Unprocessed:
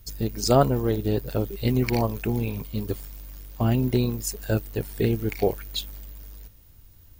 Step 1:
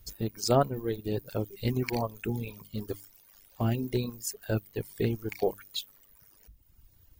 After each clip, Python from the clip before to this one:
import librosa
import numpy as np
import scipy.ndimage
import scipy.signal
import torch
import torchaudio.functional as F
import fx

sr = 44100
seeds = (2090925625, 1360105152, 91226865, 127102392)

y = fx.hum_notches(x, sr, base_hz=50, count=6)
y = fx.dereverb_blind(y, sr, rt60_s=1.2)
y = y * librosa.db_to_amplitude(-4.5)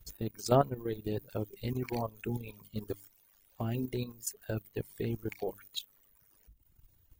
y = fx.peak_eq(x, sr, hz=5000.0, db=-4.5, octaves=0.4)
y = fx.level_steps(y, sr, step_db=11)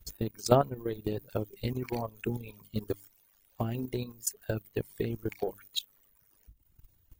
y = fx.transient(x, sr, attack_db=7, sustain_db=2)
y = y * librosa.db_to_amplitude(-1.5)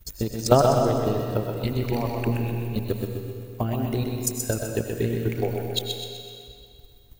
y = fx.echo_feedback(x, sr, ms=127, feedback_pct=51, wet_db=-5.5)
y = fx.rev_freeverb(y, sr, rt60_s=2.3, hf_ratio=0.9, predelay_ms=60, drr_db=4.0)
y = y * librosa.db_to_amplitude(5.5)